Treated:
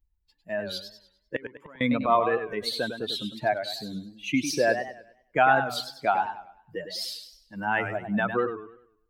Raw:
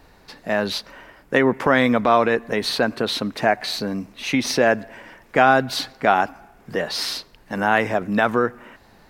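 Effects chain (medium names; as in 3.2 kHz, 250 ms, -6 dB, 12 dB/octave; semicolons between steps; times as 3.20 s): expander on every frequency bin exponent 2; 1.36–1.81 s: inverted gate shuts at -25 dBFS, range -26 dB; modulated delay 99 ms, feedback 38%, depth 164 cents, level -8.5 dB; trim -2.5 dB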